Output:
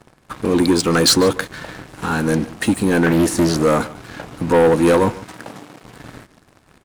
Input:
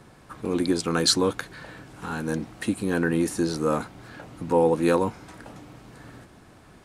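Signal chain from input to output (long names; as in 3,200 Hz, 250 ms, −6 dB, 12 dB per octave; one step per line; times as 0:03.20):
leveller curve on the samples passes 3
0:05.23–0:05.82: high-pass filter 87 Hz → 210 Hz 12 dB per octave
single-tap delay 146 ms −19 dB
0:03.06–0:03.63: highs frequency-modulated by the lows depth 0.45 ms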